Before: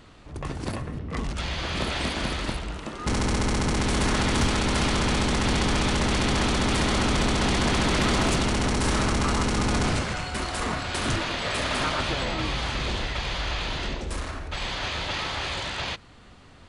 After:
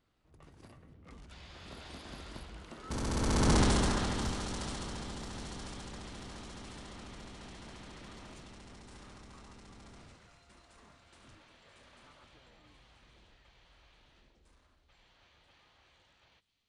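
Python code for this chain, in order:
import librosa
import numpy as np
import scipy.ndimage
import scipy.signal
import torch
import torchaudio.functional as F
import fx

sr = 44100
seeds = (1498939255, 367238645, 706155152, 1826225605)

p1 = fx.doppler_pass(x, sr, speed_mps=18, closest_m=3.3, pass_at_s=3.56)
p2 = fx.dynamic_eq(p1, sr, hz=2300.0, q=1.9, threshold_db=-56.0, ratio=4.0, max_db=-6)
y = p2 + fx.echo_wet_highpass(p2, sr, ms=983, feedback_pct=48, hz=3400.0, wet_db=-11, dry=0)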